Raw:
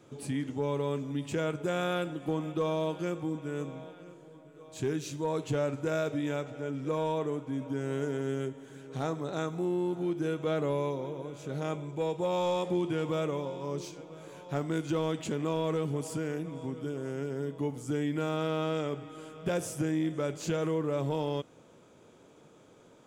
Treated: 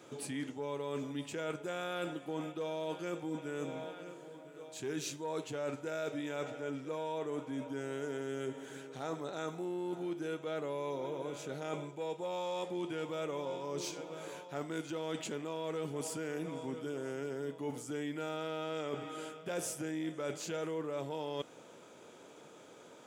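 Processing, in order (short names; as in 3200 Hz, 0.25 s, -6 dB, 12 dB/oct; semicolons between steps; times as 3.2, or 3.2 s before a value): HPF 450 Hz 6 dB/oct; notch 1100 Hz, Q 20; reverse; compressor, threshold -41 dBFS, peak gain reduction 12 dB; reverse; gain +5.5 dB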